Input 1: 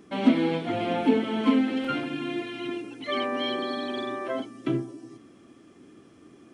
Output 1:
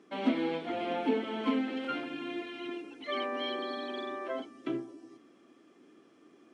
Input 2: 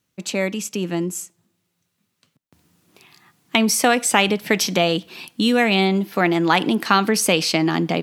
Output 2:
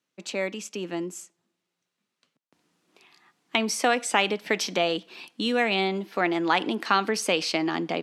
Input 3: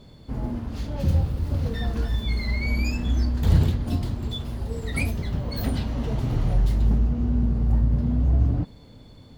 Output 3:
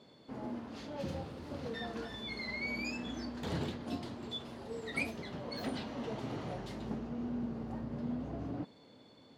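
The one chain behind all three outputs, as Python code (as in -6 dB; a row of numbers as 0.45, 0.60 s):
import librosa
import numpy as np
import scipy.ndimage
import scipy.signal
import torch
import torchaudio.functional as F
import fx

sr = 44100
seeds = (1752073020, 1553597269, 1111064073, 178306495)

y = scipy.signal.sosfilt(scipy.signal.butter(2, 280.0, 'highpass', fs=sr, output='sos'), x)
y = fx.air_absorb(y, sr, metres=54.0)
y = F.gain(torch.from_numpy(y), -5.0).numpy()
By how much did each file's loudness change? -7.0, -7.0, -15.0 LU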